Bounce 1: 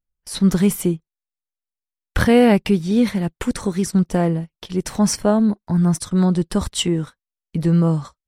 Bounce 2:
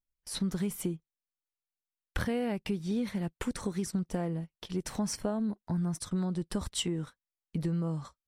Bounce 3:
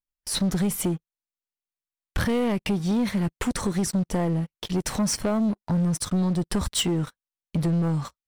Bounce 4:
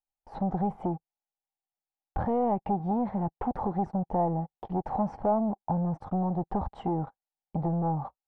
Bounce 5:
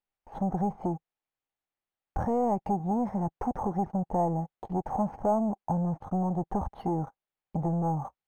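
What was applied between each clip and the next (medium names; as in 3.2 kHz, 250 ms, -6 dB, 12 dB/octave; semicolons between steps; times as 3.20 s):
compression, threshold -20 dBFS, peak gain reduction 11.5 dB; trim -8.5 dB
waveshaping leveller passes 3
resonant low-pass 800 Hz, resonance Q 9.4; trim -6.5 dB
decimation joined by straight lines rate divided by 6×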